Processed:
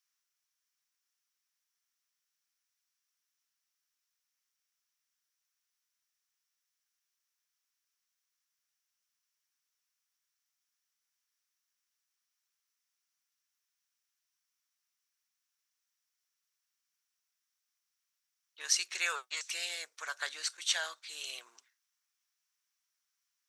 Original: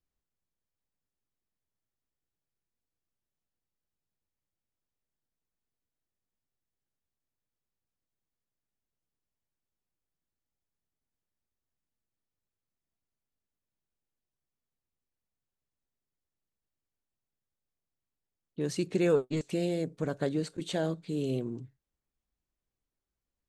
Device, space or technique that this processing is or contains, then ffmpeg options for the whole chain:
headphones lying on a table: -af "highpass=f=1.2k:w=0.5412,highpass=f=1.2k:w=1.3066,equalizer=f=5.7k:t=o:w=0.29:g=10,volume=8dB"

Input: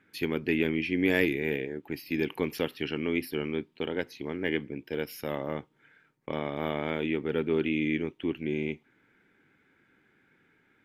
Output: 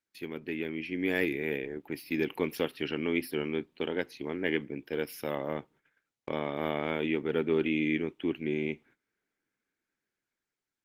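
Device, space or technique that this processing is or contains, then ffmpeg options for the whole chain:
video call: -af "highpass=f=140:p=1,dynaudnorm=f=330:g=7:m=8.5dB,agate=range=-20dB:threshold=-49dB:ratio=16:detection=peak,volume=-8dB" -ar 48000 -c:a libopus -b:a 20k

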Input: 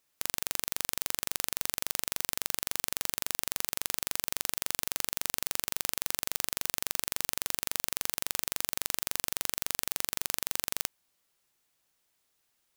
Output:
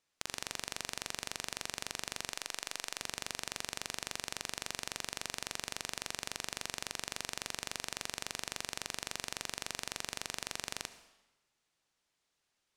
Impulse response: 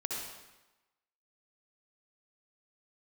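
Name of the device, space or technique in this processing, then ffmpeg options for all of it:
saturated reverb return: -filter_complex "[0:a]lowpass=7k,asplit=2[a][b];[1:a]atrim=start_sample=2205[c];[b][c]afir=irnorm=-1:irlink=0,asoftclip=type=tanh:threshold=-18.5dB,volume=-13dB[d];[a][d]amix=inputs=2:normalize=0,asettb=1/sr,asplit=3[e][f][g];[e]atrim=end=2.334[h];[f]atrim=start=2.33:end=3.01,asetpts=PTS-STARTPTS,afade=t=in:d=0.004:c=qsin,afade=t=out:st=0.676:d=0.004:c=qsin,equalizer=f=100:w=0.56:g=-13[i];[g]atrim=start=3.006[j];[h][i]acrossfade=d=0.004:c1=hsin:c2=qsin[k];[k][j]acrossfade=d=0.004:c1=qsin:c2=hsin,volume=-4dB"

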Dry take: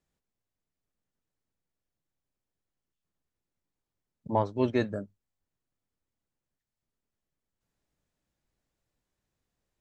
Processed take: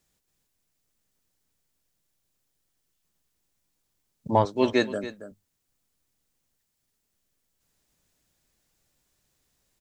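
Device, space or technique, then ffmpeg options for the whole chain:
ducked delay: -filter_complex "[0:a]asettb=1/sr,asplit=3[a][b][c];[a]atrim=end=4.454[d];[b]atrim=start=4.45:end=5.04,asetpts=PTS-STARTPTS,afade=t=in:d=0.004:c=qsin,afade=t=out:st=0.586:d=0.004:c=qsin,highpass=230[e];[c]atrim=start=5.036[f];[d][e]acrossfade=d=0.004:c1=hsin:c2=qsin[g];[g][f]acrossfade=d=0.004:c1=qsin:c2=hsin,highshelf=f=3k:g=11,asplit=3[h][i][j];[i]adelay=277,volume=-4.5dB[k];[j]apad=whole_len=444710[l];[k][l]sidechaincompress=threshold=-33dB:ratio=8:attack=12:release=968[m];[h][m]amix=inputs=2:normalize=0,volume=5dB"

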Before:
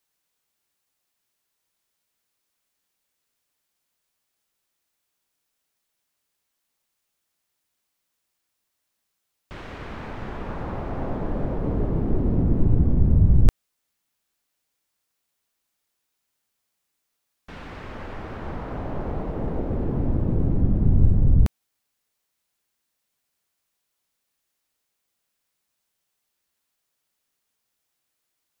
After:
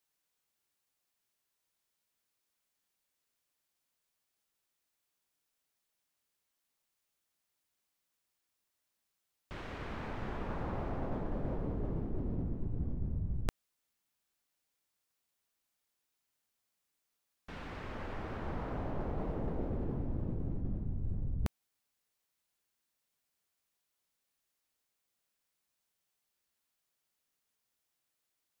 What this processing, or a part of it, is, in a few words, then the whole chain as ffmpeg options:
compression on the reversed sound: -af "areverse,acompressor=threshold=-25dB:ratio=16,areverse,volume=-6dB"

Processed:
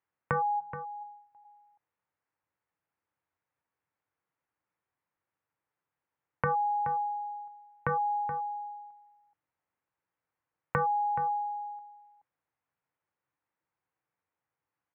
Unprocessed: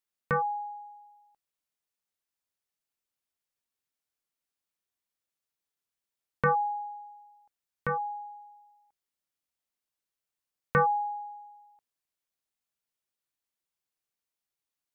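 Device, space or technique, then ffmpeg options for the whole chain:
bass amplifier: -filter_complex "[0:a]acompressor=threshold=-37dB:ratio=6,highpass=76,equalizer=f=90:t=q:w=4:g=5,equalizer=f=130:t=q:w=4:g=3,equalizer=f=230:t=q:w=4:g=-10,equalizer=f=390:t=q:w=4:g=-8,equalizer=f=630:t=q:w=4:g=-5,equalizer=f=910:t=q:w=4:g=3,lowpass=f=2.1k:w=0.5412,lowpass=f=2.1k:w=1.3066,asplit=3[a][b][c];[a]afade=t=out:st=0.59:d=0.02[d];[b]bandreject=f=63.64:t=h:w=4,bandreject=f=127.28:t=h:w=4,bandreject=f=190.92:t=h:w=4,bandreject=f=254.56:t=h:w=4,bandreject=f=318.2:t=h:w=4,bandreject=f=381.84:t=h:w=4,bandreject=f=445.48:t=h:w=4,bandreject=f=509.12:t=h:w=4,bandreject=f=572.76:t=h:w=4,bandreject=f=636.4:t=h:w=4,bandreject=f=700.04:t=h:w=4,bandreject=f=763.68:t=h:w=4,bandreject=f=827.32:t=h:w=4,bandreject=f=890.96:t=h:w=4,bandreject=f=954.6:t=h:w=4,bandreject=f=1.01824k:t=h:w=4,bandreject=f=1.08188k:t=h:w=4,bandreject=f=1.14552k:t=h:w=4,bandreject=f=1.20916k:t=h:w=4,bandreject=f=1.2728k:t=h:w=4,bandreject=f=1.33644k:t=h:w=4,bandreject=f=1.40008k:t=h:w=4,bandreject=f=1.46372k:t=h:w=4,bandreject=f=1.52736k:t=h:w=4,bandreject=f=1.591k:t=h:w=4,afade=t=in:st=0.59:d=0.02,afade=t=out:st=1.01:d=0.02[e];[c]afade=t=in:st=1.01:d=0.02[f];[d][e][f]amix=inputs=3:normalize=0,equalizer=f=370:t=o:w=2.1:g=5.5,asplit=2[g][h];[h]adelay=425.7,volume=-11dB,highshelf=f=4k:g=-9.58[i];[g][i]amix=inputs=2:normalize=0,volume=7dB"

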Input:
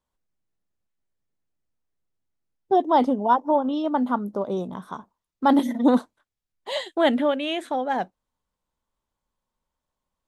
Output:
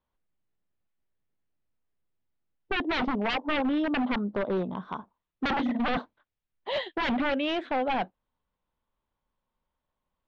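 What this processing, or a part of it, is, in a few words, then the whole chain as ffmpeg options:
synthesiser wavefolder: -af "aeval=exprs='0.0794*(abs(mod(val(0)/0.0794+3,4)-2)-1)':c=same,lowpass=f=3.6k:w=0.5412,lowpass=f=3.6k:w=1.3066"

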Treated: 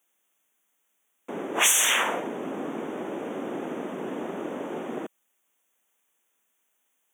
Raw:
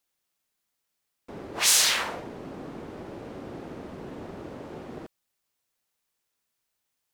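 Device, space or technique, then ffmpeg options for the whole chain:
PA system with an anti-feedback notch: -af "highpass=f=200:w=0.5412,highpass=f=200:w=1.3066,asuperstop=centerf=4600:order=12:qfactor=2,alimiter=limit=-16.5dB:level=0:latency=1:release=451,volume=7.5dB"

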